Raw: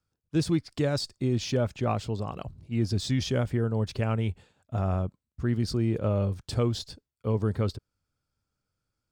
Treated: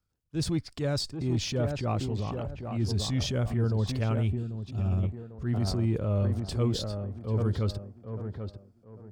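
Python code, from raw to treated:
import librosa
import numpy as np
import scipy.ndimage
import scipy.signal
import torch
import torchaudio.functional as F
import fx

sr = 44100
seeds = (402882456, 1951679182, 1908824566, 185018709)

y = fx.high_shelf(x, sr, hz=8900.0, db=5.5, at=(3.87, 4.27))
y = fx.echo_tape(y, sr, ms=793, feedback_pct=34, wet_db=-4, lp_hz=1300.0, drive_db=20.0, wow_cents=30)
y = fx.spec_box(y, sr, start_s=4.27, length_s=0.76, low_hz=420.0, high_hz=2300.0, gain_db=-9)
y = fx.low_shelf(y, sr, hz=82.0, db=9.5)
y = fx.transient(y, sr, attack_db=-7, sustain_db=4)
y = F.gain(torch.from_numpy(y), -2.5).numpy()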